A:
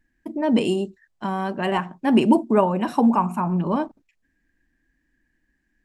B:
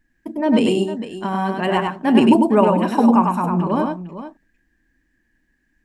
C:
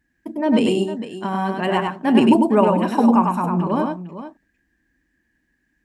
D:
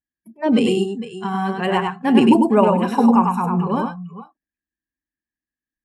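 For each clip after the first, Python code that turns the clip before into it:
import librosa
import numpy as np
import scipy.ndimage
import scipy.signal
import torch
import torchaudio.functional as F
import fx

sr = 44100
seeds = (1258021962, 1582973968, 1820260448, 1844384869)

y1 = fx.echo_multitap(x, sr, ms=(99, 455), db=(-3.5, -12.5))
y1 = y1 * librosa.db_to_amplitude(2.5)
y2 = scipy.signal.sosfilt(scipy.signal.butter(2, 48.0, 'highpass', fs=sr, output='sos'), y1)
y2 = y2 * librosa.db_to_amplitude(-1.0)
y3 = fx.noise_reduce_blind(y2, sr, reduce_db=27)
y3 = y3 * librosa.db_to_amplitude(1.0)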